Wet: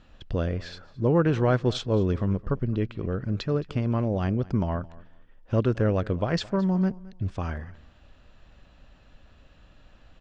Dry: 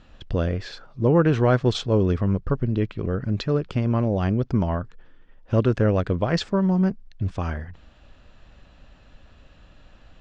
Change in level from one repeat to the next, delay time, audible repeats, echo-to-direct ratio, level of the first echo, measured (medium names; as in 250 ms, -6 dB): -13.5 dB, 217 ms, 2, -21.0 dB, -21.0 dB